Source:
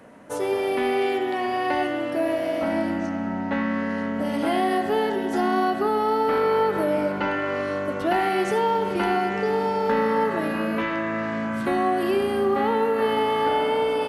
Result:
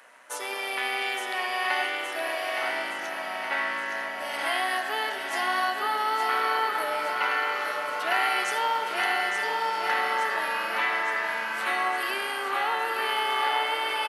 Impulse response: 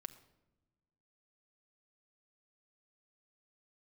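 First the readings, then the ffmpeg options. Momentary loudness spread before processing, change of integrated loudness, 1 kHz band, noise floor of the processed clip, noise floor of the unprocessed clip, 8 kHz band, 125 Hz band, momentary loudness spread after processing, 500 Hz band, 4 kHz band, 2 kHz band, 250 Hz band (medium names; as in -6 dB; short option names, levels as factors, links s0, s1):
5 LU, -3.0 dB, -2.0 dB, -34 dBFS, -28 dBFS, no reading, under -25 dB, 5 LU, -12.0 dB, +5.0 dB, +4.5 dB, -20.5 dB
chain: -filter_complex "[0:a]highpass=1300,tremolo=f=130:d=0.333,asplit=2[s0][s1];[s1]aecho=0:1:867|1734|2601|3468|4335|5202|6069|6936:0.501|0.301|0.18|0.108|0.065|0.039|0.0234|0.014[s2];[s0][s2]amix=inputs=2:normalize=0,volume=1.88"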